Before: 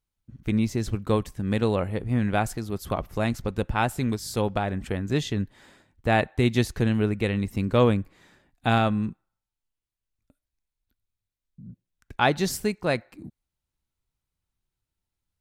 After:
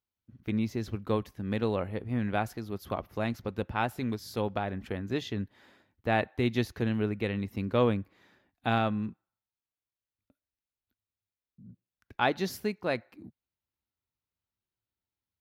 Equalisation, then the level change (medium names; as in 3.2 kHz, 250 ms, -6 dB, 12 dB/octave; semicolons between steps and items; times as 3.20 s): high-pass 88 Hz; peaking EQ 150 Hz -9.5 dB 0.27 oct; peaking EQ 8.2 kHz -14 dB 0.61 oct; -5.0 dB